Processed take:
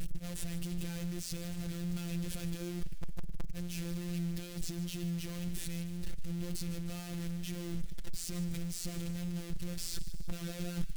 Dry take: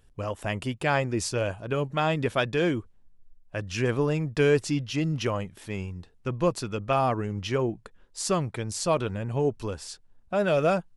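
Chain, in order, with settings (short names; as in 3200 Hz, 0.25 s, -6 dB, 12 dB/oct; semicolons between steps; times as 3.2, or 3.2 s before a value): infinite clipping; passive tone stack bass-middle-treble 10-0-1; limiter -35 dBFS, peak gain reduction 31.5 dB; in parallel at +1.5 dB: vocal rider 2 s; on the sum: robotiser 173 Hz; wow and flutter 21 cents; thin delay 0.152 s, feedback 56%, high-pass 1700 Hz, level -14 dB; gain +2.5 dB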